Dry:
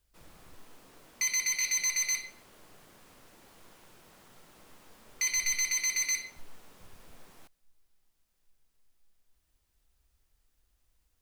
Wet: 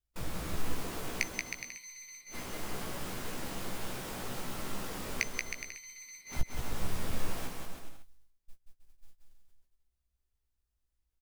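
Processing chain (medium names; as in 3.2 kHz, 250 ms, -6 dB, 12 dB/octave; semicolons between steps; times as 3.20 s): gate -60 dBFS, range -30 dB; bass shelf 260 Hz +5.5 dB; inverted gate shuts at -30 dBFS, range -35 dB; doubling 16 ms -7 dB; bouncing-ball echo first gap 180 ms, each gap 0.75×, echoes 5; trim +13 dB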